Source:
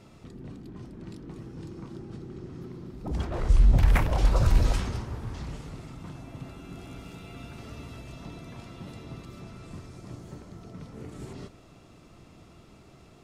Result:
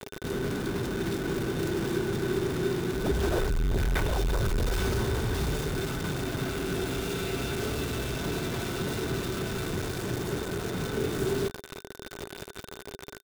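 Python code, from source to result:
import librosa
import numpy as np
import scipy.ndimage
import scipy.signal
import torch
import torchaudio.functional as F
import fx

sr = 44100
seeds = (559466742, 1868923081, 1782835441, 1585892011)

p1 = fx.over_compress(x, sr, threshold_db=-34.0, ratio=-1.0)
p2 = x + (p1 * 10.0 ** (0.0 / 20.0))
p3 = 10.0 ** (-25.0 / 20.0) * np.tanh(p2 / 10.0 ** (-25.0 / 20.0))
p4 = fx.quant_dither(p3, sr, seeds[0], bits=6, dither='none')
y = fx.small_body(p4, sr, hz=(400.0, 1500.0, 3600.0), ring_ms=45, db=12)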